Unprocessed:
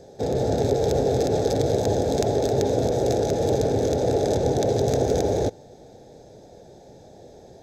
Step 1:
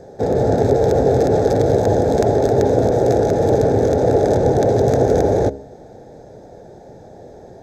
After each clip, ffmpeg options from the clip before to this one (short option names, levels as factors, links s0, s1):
-af "highshelf=f=2200:t=q:w=1.5:g=-7.5,bandreject=f=68.69:t=h:w=4,bandreject=f=137.38:t=h:w=4,bandreject=f=206.07:t=h:w=4,bandreject=f=274.76:t=h:w=4,bandreject=f=343.45:t=h:w=4,bandreject=f=412.14:t=h:w=4,bandreject=f=480.83:t=h:w=4,bandreject=f=549.52:t=h:w=4,bandreject=f=618.21:t=h:w=4,volume=2.24"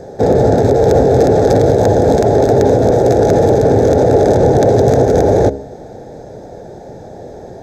-af "alimiter=level_in=2.82:limit=0.891:release=50:level=0:latency=1,volume=0.891"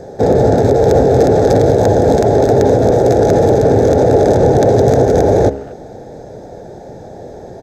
-filter_complex "[0:a]asplit=2[s0][s1];[s1]adelay=230,highpass=300,lowpass=3400,asoftclip=type=hard:threshold=0.282,volume=0.1[s2];[s0][s2]amix=inputs=2:normalize=0"